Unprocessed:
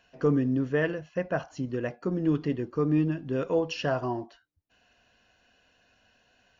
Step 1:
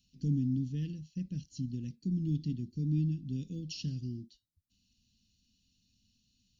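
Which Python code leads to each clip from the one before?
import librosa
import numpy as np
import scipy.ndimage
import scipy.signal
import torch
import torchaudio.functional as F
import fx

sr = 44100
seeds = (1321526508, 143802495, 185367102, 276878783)

y = scipy.signal.sosfilt(scipy.signal.ellip(3, 1.0, 80, [220.0, 4000.0], 'bandstop', fs=sr, output='sos'), x)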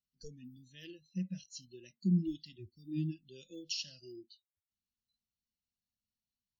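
y = fx.noise_reduce_blind(x, sr, reduce_db=30)
y = F.gain(torch.from_numpy(y), 5.0).numpy()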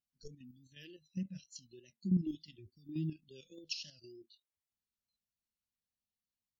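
y = fx.level_steps(x, sr, step_db=9)
y = fx.vibrato(y, sr, rate_hz=3.4, depth_cents=54.0)
y = F.gain(torch.from_numpy(y), 1.0).numpy()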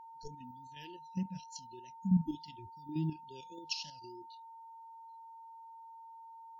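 y = fx.spec_repair(x, sr, seeds[0], start_s=2.02, length_s=0.24, low_hz=260.0, high_hz=5900.0, source='before')
y = y + 10.0 ** (-52.0 / 20.0) * np.sin(2.0 * np.pi * 910.0 * np.arange(len(y)) / sr)
y = F.gain(torch.from_numpy(y), 2.5).numpy()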